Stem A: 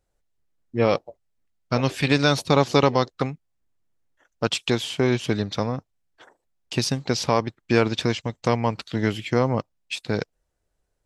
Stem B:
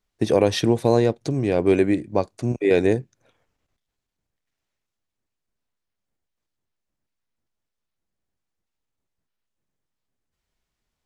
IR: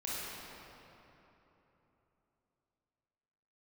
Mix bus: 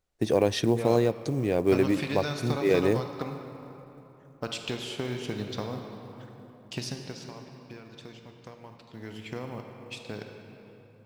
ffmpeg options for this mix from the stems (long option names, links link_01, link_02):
-filter_complex "[0:a]acompressor=threshold=-21dB:ratio=12,volume=-1dB,afade=type=out:start_time=6.76:duration=0.49:silence=0.237137,afade=type=in:start_time=8.91:duration=0.29:silence=0.354813,asplit=2[link_01][link_02];[link_02]volume=-4.5dB[link_03];[1:a]volume=-5.5dB,asplit=2[link_04][link_05];[link_05]volume=-23dB[link_06];[2:a]atrim=start_sample=2205[link_07];[link_03][link_06]amix=inputs=2:normalize=0[link_08];[link_08][link_07]afir=irnorm=-1:irlink=0[link_09];[link_01][link_04][link_09]amix=inputs=3:normalize=0,acrusher=bits=8:mode=log:mix=0:aa=0.000001"